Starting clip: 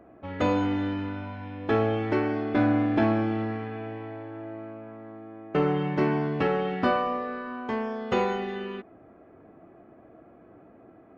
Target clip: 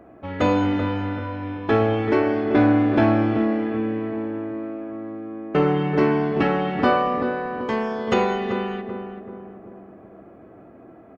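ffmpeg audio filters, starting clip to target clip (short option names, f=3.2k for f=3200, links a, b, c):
-filter_complex "[0:a]asettb=1/sr,asplit=3[a][b][c];[a]atrim=end=7.604[d];[b]atrim=start=7.6:end=8.14,asetpts=PTS-STARTPTS,afade=t=in:d=0.004:c=qsin,afade=t=out:st=0.536:d=0.004:c=qsin,highshelf=f=4.2k:g=8.5[e];[c]atrim=start=8.136[f];[d][e]acrossfade=d=0.004:c1=hsin:c2=qsin[g];[g][f]acrossfade=d=0.004:c1=qsin:c2=hsin,asplit=2[h][i];[i]adelay=385,lowpass=f=1.1k:p=1,volume=-6dB,asplit=2[j][k];[k]adelay=385,lowpass=f=1.1k:p=1,volume=0.52,asplit=2[l][m];[m]adelay=385,lowpass=f=1.1k:p=1,volume=0.52,asplit=2[n][o];[o]adelay=385,lowpass=f=1.1k:p=1,volume=0.52,asplit=2[p][q];[q]adelay=385,lowpass=f=1.1k:p=1,volume=0.52,asplit=2[r][s];[s]adelay=385,lowpass=f=1.1k:p=1,volume=0.52[t];[h][j][l][n][p][r][t]amix=inputs=7:normalize=0,volume=5dB"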